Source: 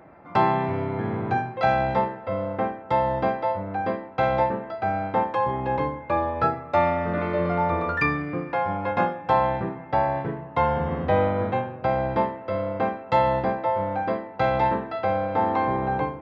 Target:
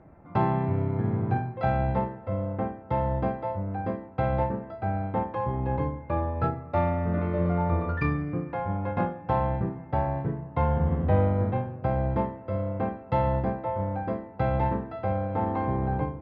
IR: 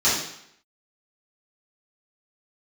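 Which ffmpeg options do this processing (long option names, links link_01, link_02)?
-af "aemphasis=mode=reproduction:type=riaa,asoftclip=type=tanh:threshold=-9dB,aeval=exprs='0.355*(cos(1*acos(clip(val(0)/0.355,-1,1)))-cos(1*PI/2))+0.0562*(cos(3*acos(clip(val(0)/0.355,-1,1)))-cos(3*PI/2))+0.00355*(cos(5*acos(clip(val(0)/0.355,-1,1)))-cos(5*PI/2))':channel_layout=same,volume=-3.5dB"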